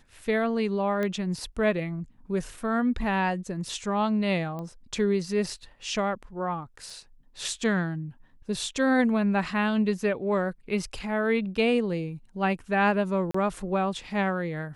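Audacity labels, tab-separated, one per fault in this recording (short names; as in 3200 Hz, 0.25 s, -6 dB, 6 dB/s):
1.030000	1.030000	pop -18 dBFS
4.590000	4.590000	pop -25 dBFS
6.900000	6.900000	gap 2.6 ms
13.310000	13.340000	gap 34 ms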